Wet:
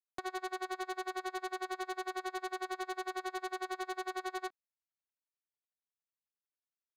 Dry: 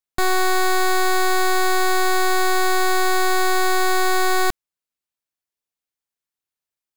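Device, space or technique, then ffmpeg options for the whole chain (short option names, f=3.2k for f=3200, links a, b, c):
helicopter radio: -af "highpass=350,lowpass=2.5k,aeval=exprs='val(0)*pow(10,-34*(0.5-0.5*cos(2*PI*11*n/s))/20)':c=same,asoftclip=type=hard:threshold=-25.5dB,volume=-6dB"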